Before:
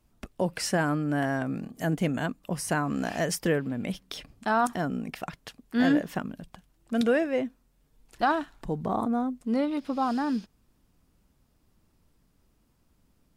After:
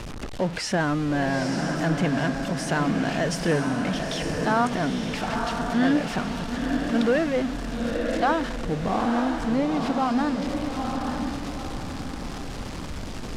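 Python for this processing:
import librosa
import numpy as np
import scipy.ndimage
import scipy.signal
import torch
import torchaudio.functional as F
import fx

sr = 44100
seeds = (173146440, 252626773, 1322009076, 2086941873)

y = x + 0.5 * 10.0 ** (-28.5 / 20.0) * np.sign(x)
y = scipy.signal.sosfilt(scipy.signal.butter(2, 5800.0, 'lowpass', fs=sr, output='sos'), y)
y = fx.echo_diffused(y, sr, ms=914, feedback_pct=41, wet_db=-4)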